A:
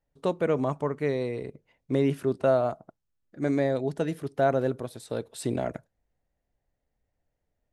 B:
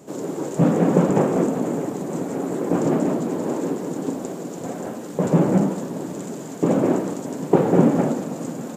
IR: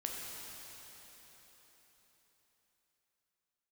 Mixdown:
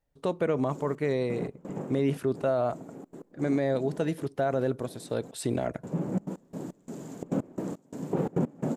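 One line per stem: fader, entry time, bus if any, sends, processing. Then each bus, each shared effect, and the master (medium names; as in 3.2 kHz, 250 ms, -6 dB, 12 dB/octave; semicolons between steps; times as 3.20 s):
+1.0 dB, 0.00 s, no send, none
-11.0 dB, 0.60 s, no send, bass shelf 200 Hz +9.5 dB; trance gate "xxxx.x..xx.." 172 bpm -24 dB; auto duck -10 dB, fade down 1.55 s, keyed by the first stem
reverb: none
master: peak limiter -17.5 dBFS, peak gain reduction 7 dB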